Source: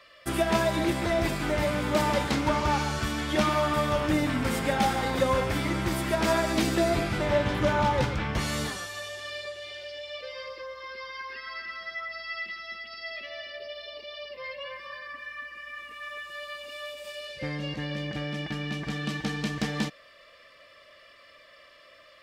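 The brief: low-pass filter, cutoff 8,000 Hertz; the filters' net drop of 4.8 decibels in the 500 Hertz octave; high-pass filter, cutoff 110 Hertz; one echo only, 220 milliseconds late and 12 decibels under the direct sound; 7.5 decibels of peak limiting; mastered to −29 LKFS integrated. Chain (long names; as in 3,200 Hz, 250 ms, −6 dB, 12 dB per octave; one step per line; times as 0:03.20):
high-pass filter 110 Hz
low-pass filter 8,000 Hz
parametric band 500 Hz −6.5 dB
brickwall limiter −21 dBFS
single-tap delay 220 ms −12 dB
level +3.5 dB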